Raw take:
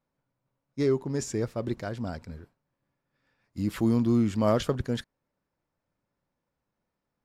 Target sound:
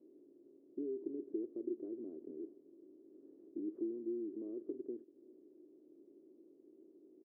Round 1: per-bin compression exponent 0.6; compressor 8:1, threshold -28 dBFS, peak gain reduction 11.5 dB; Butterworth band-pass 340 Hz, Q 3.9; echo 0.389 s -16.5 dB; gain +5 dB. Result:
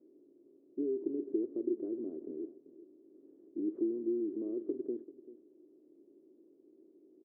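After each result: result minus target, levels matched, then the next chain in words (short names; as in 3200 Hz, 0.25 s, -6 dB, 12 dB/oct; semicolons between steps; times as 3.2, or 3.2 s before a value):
compressor: peak gain reduction -6.5 dB; echo-to-direct +7 dB
per-bin compression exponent 0.6; compressor 8:1, threshold -35.5 dBFS, peak gain reduction 18 dB; Butterworth band-pass 340 Hz, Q 3.9; echo 0.389 s -16.5 dB; gain +5 dB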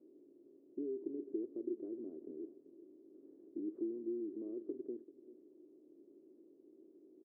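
echo-to-direct +7 dB
per-bin compression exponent 0.6; compressor 8:1, threshold -35.5 dBFS, peak gain reduction 18 dB; Butterworth band-pass 340 Hz, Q 3.9; echo 0.389 s -23.5 dB; gain +5 dB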